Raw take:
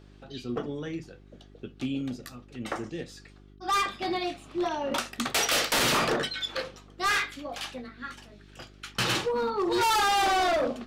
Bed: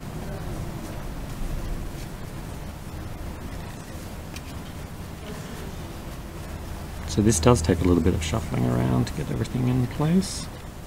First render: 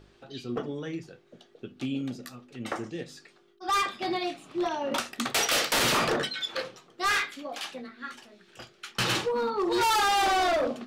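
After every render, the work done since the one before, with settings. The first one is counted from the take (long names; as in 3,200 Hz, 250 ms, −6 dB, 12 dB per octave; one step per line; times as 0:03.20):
hum removal 50 Hz, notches 6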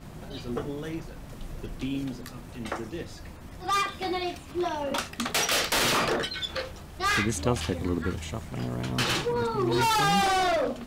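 mix in bed −9 dB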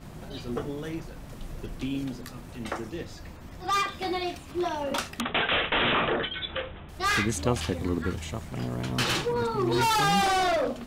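0:02.94–0:03.99: parametric band 10,000 Hz −5.5 dB 0.39 octaves
0:05.20–0:06.89: bad sample-rate conversion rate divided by 6×, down none, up filtered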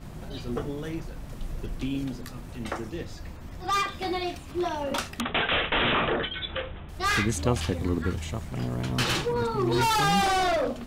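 low-shelf EQ 98 Hz +6 dB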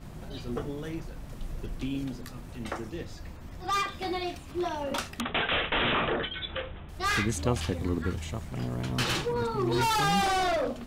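level −2.5 dB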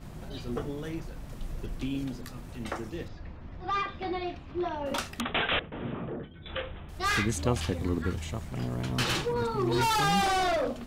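0:03.08–0:04.86: high-frequency loss of the air 240 metres
0:05.59–0:06.46: resonant band-pass 150 Hz, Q 0.84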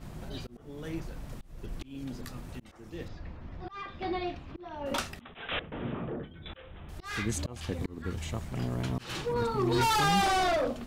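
volume swells 379 ms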